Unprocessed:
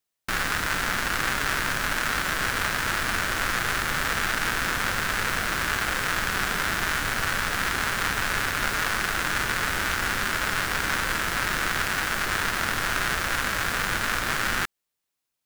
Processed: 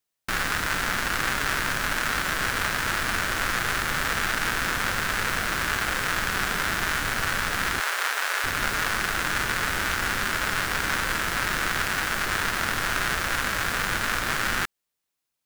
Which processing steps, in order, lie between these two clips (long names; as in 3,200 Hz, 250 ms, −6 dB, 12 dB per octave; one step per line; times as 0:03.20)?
0:07.80–0:08.44: high-pass filter 460 Hz 24 dB per octave